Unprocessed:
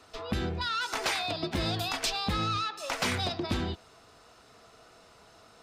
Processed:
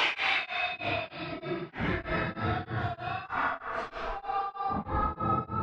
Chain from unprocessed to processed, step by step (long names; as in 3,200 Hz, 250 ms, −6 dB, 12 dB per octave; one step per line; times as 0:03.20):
low-pass filter sweep 3,600 Hz → 540 Hz, 0:00.78–0:03.10
four-comb reverb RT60 0.41 s, combs from 25 ms, DRR 9 dB
extreme stretch with random phases 4×, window 0.05 s, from 0:01.09
on a send: feedback echo with a band-pass in the loop 70 ms, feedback 76%, band-pass 1,500 Hz, level −6 dB
on the sum: tremolo along a rectified sine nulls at 3.2 Hz